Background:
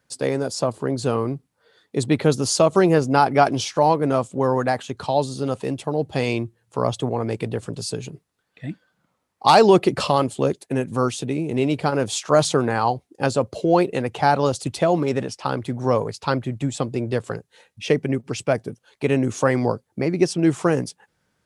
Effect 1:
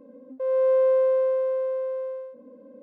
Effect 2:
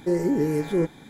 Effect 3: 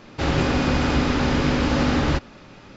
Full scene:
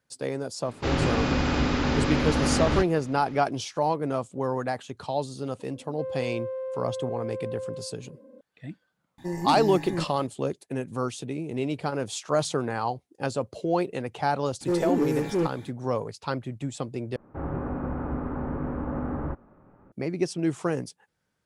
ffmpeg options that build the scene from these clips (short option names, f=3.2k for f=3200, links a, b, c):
-filter_complex "[3:a]asplit=2[a][b];[2:a]asplit=2[c][d];[0:a]volume=-8dB[e];[1:a]acompressor=threshold=-28dB:ratio=6:attack=3.2:release=140:knee=1:detection=peak[f];[c]aecho=1:1:1.1:0.84[g];[d]asoftclip=type=hard:threshold=-19dB[h];[b]lowpass=f=1.3k:w=0.5412,lowpass=f=1.3k:w=1.3066[i];[e]asplit=2[j][k];[j]atrim=end=17.164[l];[i]atrim=end=2.76,asetpts=PTS-STARTPTS,volume=-10dB[m];[k]atrim=start=19.916[n];[a]atrim=end=2.76,asetpts=PTS-STARTPTS,volume=-4dB,afade=t=in:d=0.004:c=hsin,afade=t=out:st=2.756:d=0.004:c=hsin,adelay=640[o];[f]atrim=end=2.82,asetpts=PTS-STARTPTS,volume=-3.5dB,afade=t=in:d=0.004:c=hsin,afade=t=out:st=2.816:d=0.004:c=hsin,adelay=5590[p];[g]atrim=end=1.09,asetpts=PTS-STARTPTS,volume=-7dB,afade=t=in:d=0.004:c=hsin,afade=t=out:st=1.086:d=0.004:c=hsin,adelay=9180[q];[h]atrim=end=1.09,asetpts=PTS-STARTPTS,volume=-1.5dB,afade=t=in:d=0.004:c=hsin,afade=t=out:st=1.086:d=0.004:c=hsin,adelay=14610[r];[l][m]acrossfade=d=0.004:c1=hsin:c2=hsin[s];[s][n]acrossfade=d=0.004:c1=hsin:c2=hsin[t];[t][o][p][q][r]amix=inputs=5:normalize=0"